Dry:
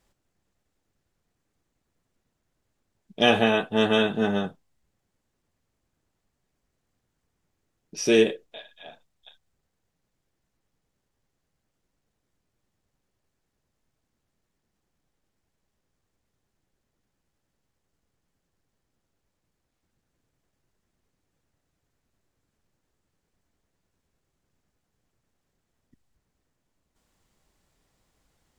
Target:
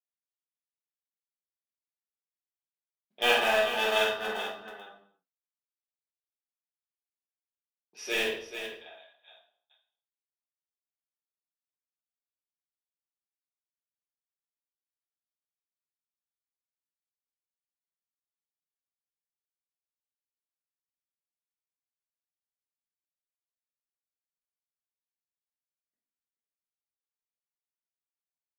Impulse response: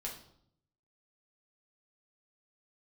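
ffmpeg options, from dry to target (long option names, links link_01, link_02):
-filter_complex "[0:a]agate=range=-33dB:threshold=-48dB:ratio=3:detection=peak,highpass=950,equalizer=frequency=7100:width_type=o:width=1.6:gain=-13,asplit=2[link_01][link_02];[link_02]acrusher=bits=3:mix=0:aa=0.000001,volume=-9dB[link_03];[link_01][link_03]amix=inputs=2:normalize=0,aecho=1:1:48|432:0.631|0.355[link_04];[1:a]atrim=start_sample=2205,afade=type=out:start_time=0.38:duration=0.01,atrim=end_sample=17199[link_05];[link_04][link_05]afir=irnorm=-1:irlink=0"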